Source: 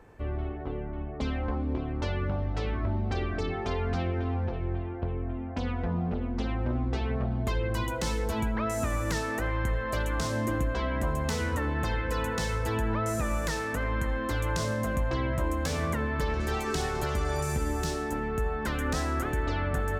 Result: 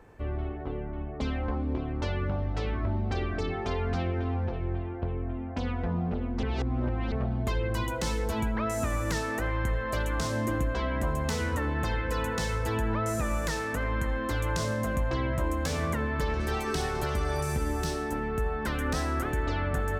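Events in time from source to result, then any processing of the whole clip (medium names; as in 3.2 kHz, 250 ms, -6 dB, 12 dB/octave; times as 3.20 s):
6.43–7.12 s: reverse
16.40–19.33 s: band-stop 7 kHz, Q 10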